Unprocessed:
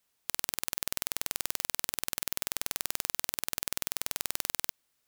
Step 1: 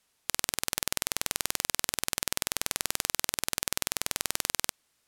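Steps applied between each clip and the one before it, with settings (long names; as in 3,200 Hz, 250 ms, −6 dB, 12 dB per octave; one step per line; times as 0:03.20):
low-pass filter 12,000 Hz 12 dB per octave
level +5.5 dB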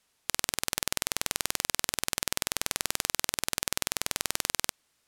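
high-shelf EQ 11,000 Hz −3.5 dB
level +1 dB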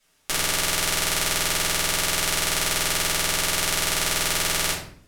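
rectangular room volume 79 cubic metres, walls mixed, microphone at 2.3 metres
level −1 dB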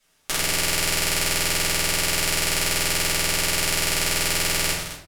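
loudspeakers that aren't time-aligned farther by 33 metres −10 dB, 74 metres −11 dB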